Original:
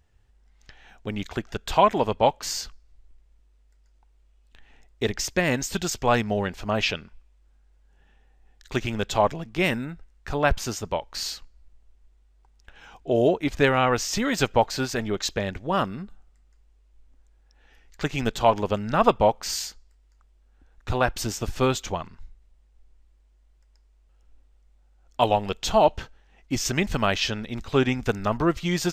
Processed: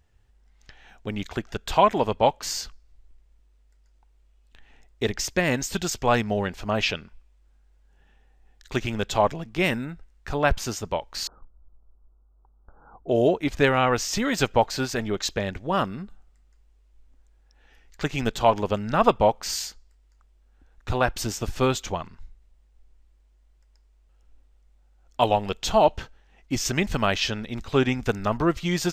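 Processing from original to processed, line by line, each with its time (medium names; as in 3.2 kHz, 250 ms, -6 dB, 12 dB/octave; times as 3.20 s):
11.27–13.09 s: steep low-pass 1.4 kHz 96 dB/octave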